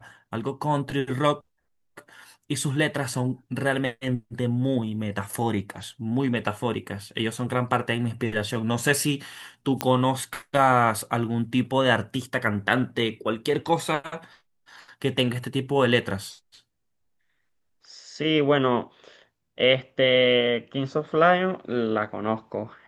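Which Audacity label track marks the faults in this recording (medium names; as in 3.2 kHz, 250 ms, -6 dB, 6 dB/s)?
9.810000	9.810000	pop -7 dBFS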